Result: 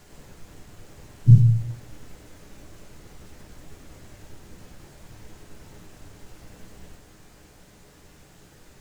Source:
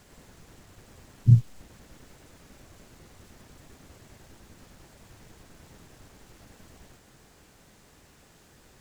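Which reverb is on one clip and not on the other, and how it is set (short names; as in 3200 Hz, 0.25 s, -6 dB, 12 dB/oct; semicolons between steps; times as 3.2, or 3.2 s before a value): shoebox room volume 37 m³, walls mixed, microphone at 0.46 m; gain +1.5 dB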